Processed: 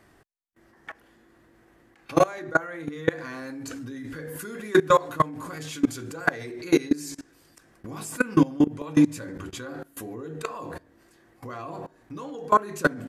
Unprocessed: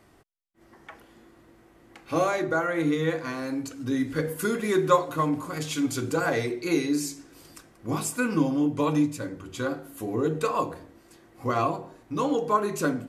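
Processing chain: bell 1700 Hz +7.5 dB 0.28 oct; level quantiser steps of 22 dB; gain +7.5 dB

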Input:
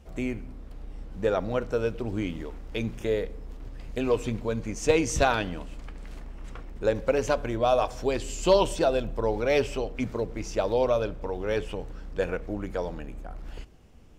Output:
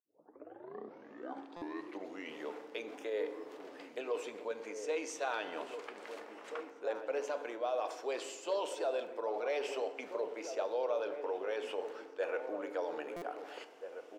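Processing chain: tape start at the beginning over 2.47 s; reverse; compressor 8:1, threshold -34 dBFS, peak gain reduction 18.5 dB; reverse; limiter -30 dBFS, peak gain reduction 6.5 dB; HPF 410 Hz 24 dB/oct; high shelf 5000 Hz -9 dB; outdoor echo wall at 280 m, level -8 dB; FDN reverb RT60 1.6 s, low-frequency decay 1.5×, high-frequency decay 0.55×, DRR 11 dB; stuck buffer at 1.56/13.16, samples 256, times 9; gain +4.5 dB

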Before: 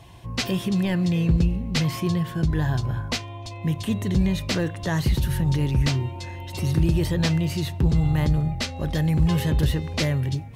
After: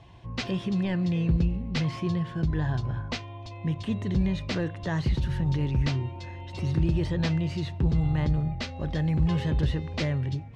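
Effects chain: air absorption 120 m; gain -4 dB

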